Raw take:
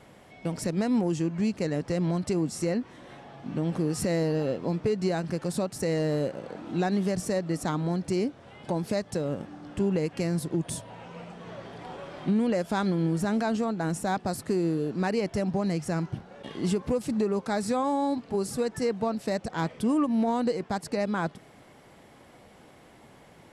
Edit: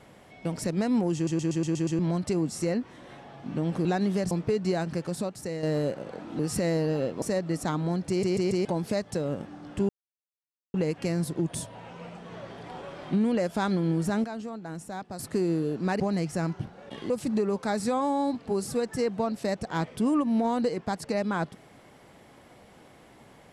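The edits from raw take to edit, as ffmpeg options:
ffmpeg -i in.wav -filter_complex "[0:a]asplit=22[link_01][link_02][link_03][link_04][link_05][link_06][link_07][link_08][link_09][link_10][link_11][link_12][link_13][link_14][link_15][link_16][link_17][link_18][link_19][link_20][link_21][link_22];[link_01]atrim=end=1.272[link_23];[link_02]atrim=start=1.148:end=1.272[link_24];[link_03]atrim=start=1.148:end=1.272[link_25];[link_04]atrim=start=1.148:end=1.272[link_26];[link_05]atrim=start=1.148:end=1.272[link_27];[link_06]atrim=start=1.148:end=1.272[link_28];[link_07]atrim=start=1.148:end=1.272[link_29];[link_08]atrim=start=1.988:end=3.852[link_30];[link_09]atrim=start=6.758:end=7.222[link_31];[link_10]atrim=start=4.678:end=6,asetpts=PTS-STARTPTS,afade=type=out:start_time=0.612:duration=0.71:silence=0.398107[link_32];[link_11]atrim=start=6:end=6.762,asetpts=PTS-STARTPTS,afade=type=in:duration=0.004:curve=hsin:silence=0.398107[link_33];[link_12]atrim=start=3.848:end=4.682[link_34];[link_13]atrim=start=7.218:end=8.232[link_35];[link_14]atrim=start=8.088:end=8.232[link_36];[link_15]atrim=start=8.088:end=8.232[link_37];[link_16]atrim=start=8.088:end=8.232[link_38];[link_17]atrim=start=8.648:end=9.89,asetpts=PTS-STARTPTS,afade=type=out:start_time=1.238:duration=0.004:curve=hsin,apad=pad_dur=0.85[link_39];[link_18]atrim=start=9.89:end=13.392,asetpts=PTS-STARTPTS,afade=type=in:duration=0.004:curve=hsin[link_40];[link_19]atrim=start=13.388:end=14.342,asetpts=PTS-STARTPTS,volume=-9dB[link_41];[link_20]atrim=start=14.338:end=15.152[link_42];[link_21]atrim=start=15.528:end=16.632[link_43];[link_22]atrim=start=16.928[link_44];[link_23][link_24]acrossfade=duration=0.004:curve1=hsin:curve2=hsin[link_45];[link_45][link_25]acrossfade=duration=0.004:curve1=hsin:curve2=hsin[link_46];[link_46][link_26]acrossfade=duration=0.004:curve1=hsin:curve2=hsin[link_47];[link_47][link_27]acrossfade=duration=0.004:curve1=hsin:curve2=hsin[link_48];[link_48][link_28]acrossfade=duration=0.004:curve1=hsin:curve2=hsin[link_49];[link_49][link_29]acrossfade=duration=0.004:curve1=hsin:curve2=hsin[link_50];[link_50][link_30]acrossfade=duration=0.004:curve1=hsin:curve2=hsin[link_51];[link_51][link_31]acrossfade=duration=0.004:curve1=hsin:curve2=hsin[link_52];[link_32][link_33]concat=n=2:v=0:a=1[link_53];[link_52][link_53]acrossfade=duration=0.004:curve1=hsin:curve2=hsin[link_54];[link_54][link_34]acrossfade=duration=0.004:curve1=hsin:curve2=hsin[link_55];[link_55][link_35]acrossfade=duration=0.004:curve1=hsin:curve2=hsin[link_56];[link_56][link_36]acrossfade=duration=0.004:curve1=hsin:curve2=hsin[link_57];[link_57][link_37]acrossfade=duration=0.004:curve1=hsin:curve2=hsin[link_58];[link_58][link_38]acrossfade=duration=0.004:curve1=hsin:curve2=hsin[link_59];[link_39][link_40]concat=n=2:v=0:a=1[link_60];[link_59][link_60]acrossfade=duration=0.004:curve1=hsin:curve2=hsin[link_61];[link_61][link_41]acrossfade=duration=0.004:curve1=hsin:curve2=hsin[link_62];[link_62][link_42]acrossfade=duration=0.004:curve1=hsin:curve2=hsin[link_63];[link_63][link_43]acrossfade=duration=0.004:curve1=hsin:curve2=hsin[link_64];[link_64][link_44]acrossfade=duration=0.004:curve1=hsin:curve2=hsin" out.wav

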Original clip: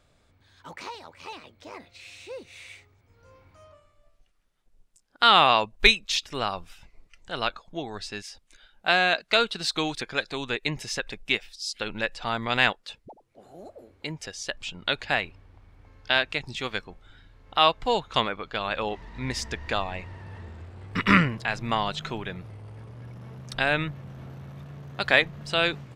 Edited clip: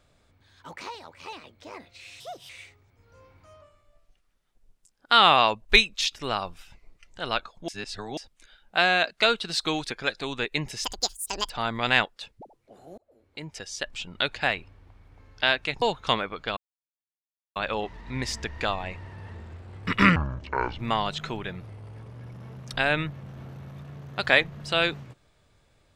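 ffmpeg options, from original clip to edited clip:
ffmpeg -i in.wav -filter_complex "[0:a]asplit=12[link_01][link_02][link_03][link_04][link_05][link_06][link_07][link_08][link_09][link_10][link_11][link_12];[link_01]atrim=end=2.204[link_13];[link_02]atrim=start=2.2:end=2.6,asetpts=PTS-STARTPTS,asetrate=60417,aresample=44100[link_14];[link_03]atrim=start=2.596:end=7.792[link_15];[link_04]atrim=start=7.788:end=8.282,asetpts=PTS-STARTPTS,areverse[link_16];[link_05]atrim=start=8.278:end=10.954[link_17];[link_06]atrim=start=10.95:end=12.17,asetpts=PTS-STARTPTS,asetrate=82026,aresample=44100[link_18];[link_07]atrim=start=12.166:end=13.65,asetpts=PTS-STARTPTS,afade=type=out:start_time=1.48:duration=0.004:curve=hsin[link_19];[link_08]atrim=start=13.65:end=16.492,asetpts=PTS-STARTPTS,afade=type=in:duration=0.72[link_20];[link_09]atrim=start=17.888:end=18.64,asetpts=PTS-STARTPTS,afade=type=out:start_time=0.748:duration=0.004:curve=hsin,apad=pad_dur=0.99[link_21];[link_10]atrim=start=18.64:end=21.244,asetpts=PTS-STARTPTS,afade=type=in:duration=0.004:curve=hsin[link_22];[link_11]atrim=start=21.24:end=21.6,asetpts=PTS-STARTPTS,asetrate=25137,aresample=44100[link_23];[link_12]atrim=start=21.596[link_24];[link_13][link_14]acrossfade=duration=0.004:curve1=hsin:curve2=hsin[link_25];[link_25][link_15]acrossfade=duration=0.004:curve1=hsin:curve2=hsin[link_26];[link_26][link_16]acrossfade=duration=0.004:curve1=hsin:curve2=hsin[link_27];[link_27][link_17]acrossfade=duration=0.004:curve1=hsin:curve2=hsin[link_28];[link_28][link_18]acrossfade=duration=0.004:curve1=hsin:curve2=hsin[link_29];[link_19][link_20]concat=n=2:v=0:a=1[link_30];[link_29][link_30]acrossfade=duration=0.004:curve1=hsin:curve2=hsin[link_31];[link_21][link_22]concat=n=2:v=0:a=1[link_32];[link_31][link_32]acrossfade=duration=0.004:curve1=hsin:curve2=hsin[link_33];[link_33][link_23]acrossfade=duration=0.004:curve1=hsin:curve2=hsin[link_34];[link_34][link_24]acrossfade=duration=0.004:curve1=hsin:curve2=hsin" out.wav

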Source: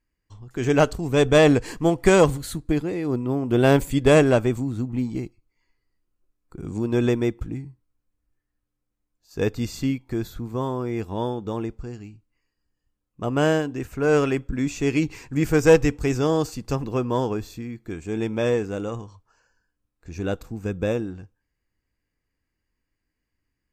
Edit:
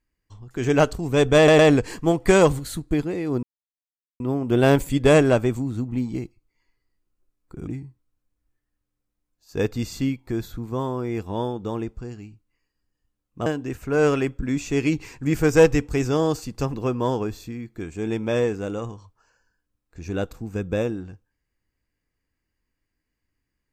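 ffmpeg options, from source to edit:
ffmpeg -i in.wav -filter_complex "[0:a]asplit=6[link_01][link_02][link_03][link_04][link_05][link_06];[link_01]atrim=end=1.482[link_07];[link_02]atrim=start=1.368:end=1.482[link_08];[link_03]atrim=start=1.368:end=3.21,asetpts=PTS-STARTPTS,afade=type=out:start_time=1.838:duration=0.004:curve=hsin,apad=pad_dur=0.77[link_09];[link_04]atrim=start=3.21:end=6.682,asetpts=PTS-STARTPTS,afade=type=in:duration=0.004:curve=hsin[link_10];[link_05]atrim=start=7.488:end=13.282[link_11];[link_06]atrim=start=13.558[link_12];[link_07][link_08]acrossfade=duration=0.004:curve1=hsin:curve2=hsin[link_13];[link_09][link_10]concat=n=2:v=0:a=1[link_14];[link_13][link_14]acrossfade=duration=0.004:curve1=hsin:curve2=hsin[link_15];[link_15][link_11]acrossfade=duration=0.004:curve1=hsin:curve2=hsin[link_16];[link_16][link_12]acrossfade=duration=0.004:curve1=hsin:curve2=hsin" out.wav

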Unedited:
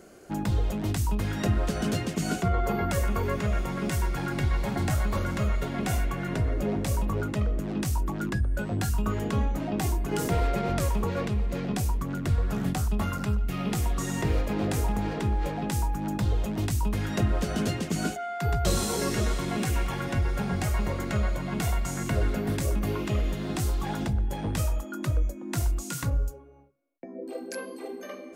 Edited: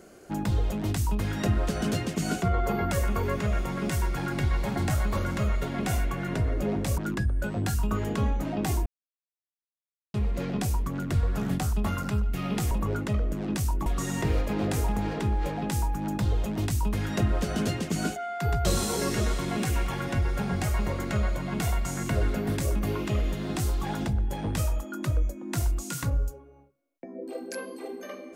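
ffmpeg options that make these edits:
ffmpeg -i in.wav -filter_complex "[0:a]asplit=6[link_01][link_02][link_03][link_04][link_05][link_06];[link_01]atrim=end=6.982[link_07];[link_02]atrim=start=8.128:end=10.01,asetpts=PTS-STARTPTS,afade=type=out:start_time=1.878:duration=0.004:curve=hsin[link_08];[link_03]atrim=start=10.01:end=11.29,asetpts=PTS-STARTPTS,volume=0[link_09];[link_04]atrim=start=11.29:end=13.862,asetpts=PTS-STARTPTS,afade=type=in:duration=0.004:curve=hsin[link_10];[link_05]atrim=start=6.978:end=8.132[link_11];[link_06]atrim=start=13.858[link_12];[link_08][link_09][link_10]concat=n=3:v=0:a=1[link_13];[link_07][link_13]acrossfade=duration=0.004:curve1=hsin:curve2=hsin[link_14];[link_14][link_11]acrossfade=duration=0.004:curve1=hsin:curve2=hsin[link_15];[link_15][link_12]acrossfade=duration=0.004:curve1=hsin:curve2=hsin" out.wav

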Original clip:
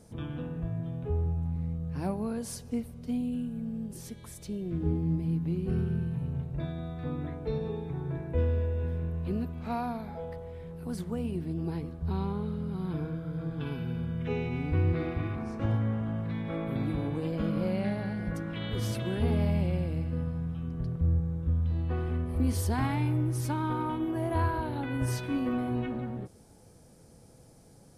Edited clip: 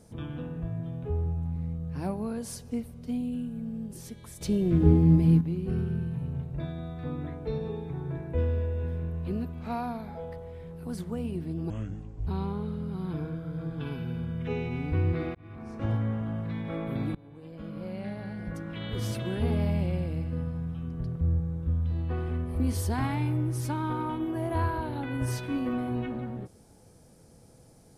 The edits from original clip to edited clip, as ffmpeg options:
ffmpeg -i in.wav -filter_complex "[0:a]asplit=7[link_01][link_02][link_03][link_04][link_05][link_06][link_07];[link_01]atrim=end=4.412[link_08];[link_02]atrim=start=4.408:end=5.412,asetpts=PTS-STARTPTS,volume=9.5dB[link_09];[link_03]atrim=start=5.408:end=11.704[link_10];[link_04]atrim=start=11.7:end=12.07,asetpts=PTS-STARTPTS,asetrate=28665,aresample=44100,atrim=end_sample=25103,asetpts=PTS-STARTPTS[link_11];[link_05]atrim=start=12.066:end=15.15,asetpts=PTS-STARTPTS,afade=type=out:start_time=3.08:duration=0.004:curve=hsin[link_12];[link_06]atrim=start=15.15:end=16.95,asetpts=PTS-STARTPTS,afade=type=in:duration=0.55,afade=type=out:start_time=1.796:duration=0.004:curve=hsin:silence=0.0668344[link_13];[link_07]atrim=start=16.95,asetpts=PTS-STARTPTS,afade=type=in:duration=1.92:silence=0.0668344[link_14];[link_08][link_09]acrossfade=duration=0.004:curve1=hsin:curve2=hsin[link_15];[link_15][link_10]acrossfade=duration=0.004:curve1=hsin:curve2=hsin[link_16];[link_16][link_11]acrossfade=duration=0.004:curve1=hsin:curve2=hsin[link_17];[link_12][link_13][link_14]concat=n=3:v=0:a=1[link_18];[link_17][link_18]acrossfade=duration=0.004:curve1=hsin:curve2=hsin" out.wav

